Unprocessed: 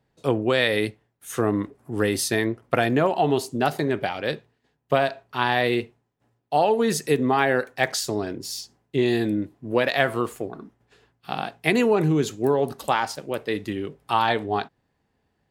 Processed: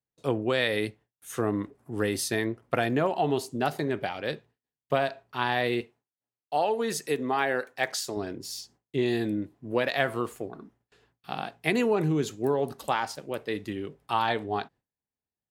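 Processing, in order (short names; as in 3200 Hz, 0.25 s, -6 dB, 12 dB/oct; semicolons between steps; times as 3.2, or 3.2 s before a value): gate with hold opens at -50 dBFS; 5.81–8.17 low shelf 180 Hz -12 dB; gain -5 dB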